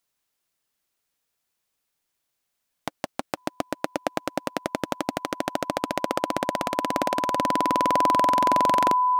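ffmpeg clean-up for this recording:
-af "bandreject=f=1k:w=30"

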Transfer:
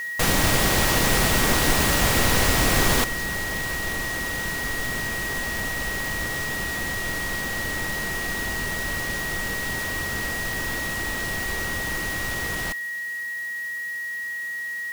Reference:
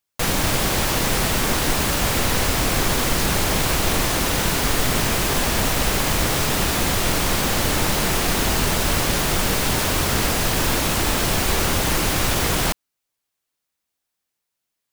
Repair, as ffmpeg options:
-af "adeclick=t=4,bandreject=f=1.9k:w=30,afwtdn=0.005,asetnsamples=n=441:p=0,asendcmd='3.04 volume volume 10.5dB',volume=0dB"

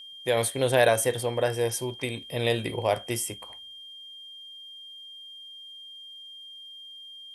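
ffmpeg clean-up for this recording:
-af "bandreject=f=3.2k:w=30,agate=range=-21dB:threshold=-37dB"

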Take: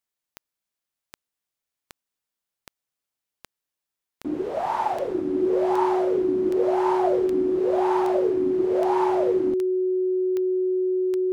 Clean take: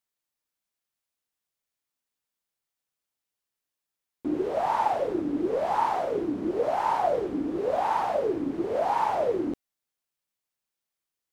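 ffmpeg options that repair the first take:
-af "adeclick=t=4,bandreject=f=370:w=30"

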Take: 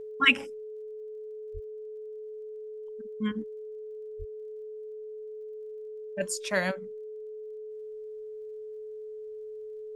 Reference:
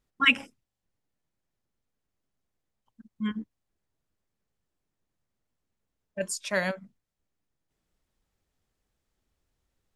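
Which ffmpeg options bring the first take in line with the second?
-filter_complex "[0:a]adeclick=t=4,bandreject=f=430:w=30,asplit=3[a][b][c];[a]afade=t=out:st=1.53:d=0.02[d];[b]highpass=f=140:w=0.5412,highpass=f=140:w=1.3066,afade=t=in:st=1.53:d=0.02,afade=t=out:st=1.65:d=0.02[e];[c]afade=t=in:st=1.65:d=0.02[f];[d][e][f]amix=inputs=3:normalize=0,asplit=3[g][h][i];[g]afade=t=out:st=4.18:d=0.02[j];[h]highpass=f=140:w=0.5412,highpass=f=140:w=1.3066,afade=t=in:st=4.18:d=0.02,afade=t=out:st=4.3:d=0.02[k];[i]afade=t=in:st=4.3:d=0.02[l];[j][k][l]amix=inputs=3:normalize=0"

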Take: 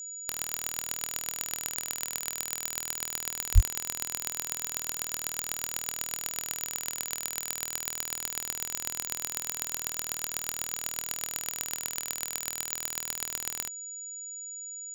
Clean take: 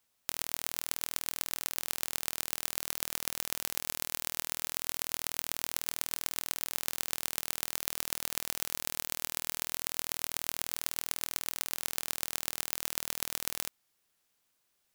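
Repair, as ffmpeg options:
-filter_complex "[0:a]bandreject=f=6.9k:w=30,asplit=3[a][b][c];[a]afade=t=out:st=3.54:d=0.02[d];[b]highpass=f=140:w=0.5412,highpass=f=140:w=1.3066,afade=t=in:st=3.54:d=0.02,afade=t=out:st=3.66:d=0.02[e];[c]afade=t=in:st=3.66:d=0.02[f];[d][e][f]amix=inputs=3:normalize=0"

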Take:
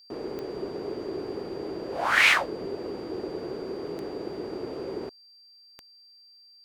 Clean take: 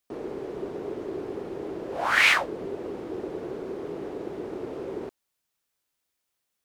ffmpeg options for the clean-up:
-af "adeclick=t=4,bandreject=f=4.7k:w=30"

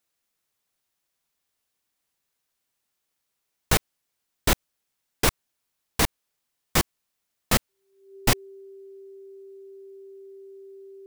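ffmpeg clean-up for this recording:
-af "bandreject=f=390:w=30"

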